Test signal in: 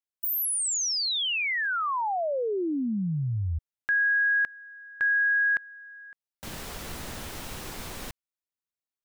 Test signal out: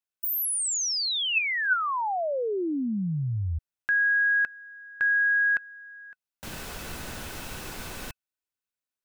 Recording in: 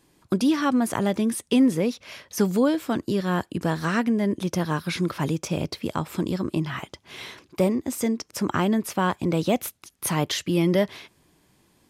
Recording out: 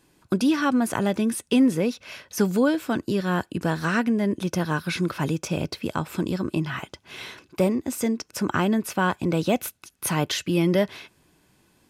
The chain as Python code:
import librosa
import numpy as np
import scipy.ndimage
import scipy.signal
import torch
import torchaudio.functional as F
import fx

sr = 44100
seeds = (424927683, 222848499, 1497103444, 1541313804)

y = fx.small_body(x, sr, hz=(1500.0, 2600.0), ring_ms=45, db=9)